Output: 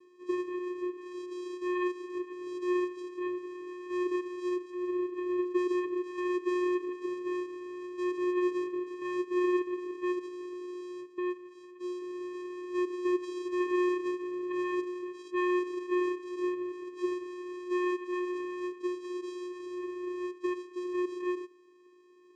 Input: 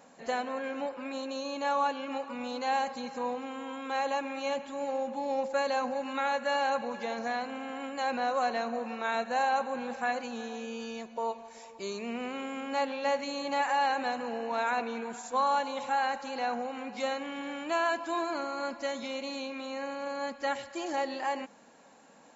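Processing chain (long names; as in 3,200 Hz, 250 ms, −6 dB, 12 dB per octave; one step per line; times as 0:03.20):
0:00.98–0:02.12: low-shelf EQ 280 Hz −10 dB
channel vocoder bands 4, square 359 Hz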